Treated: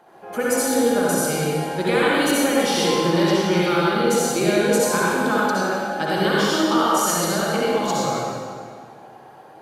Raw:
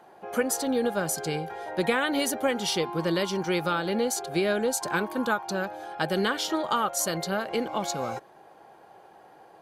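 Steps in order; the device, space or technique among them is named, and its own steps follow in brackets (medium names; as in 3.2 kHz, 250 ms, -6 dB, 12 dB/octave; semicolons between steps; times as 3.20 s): stairwell (reverberation RT60 2.0 s, pre-delay 56 ms, DRR -7 dB)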